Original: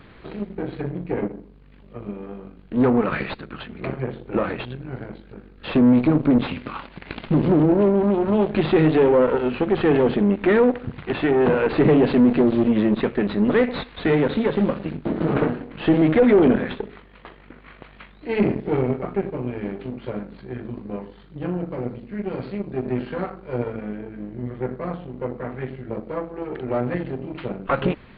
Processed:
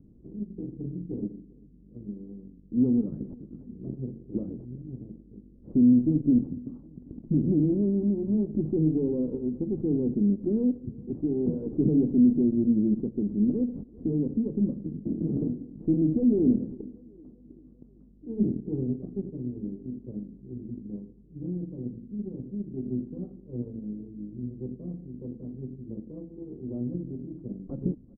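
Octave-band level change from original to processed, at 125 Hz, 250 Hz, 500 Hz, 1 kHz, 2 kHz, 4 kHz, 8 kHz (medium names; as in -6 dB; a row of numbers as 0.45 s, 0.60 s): -5.5 dB, -4.5 dB, -14.0 dB, under -30 dB, under -40 dB, under -40 dB, no reading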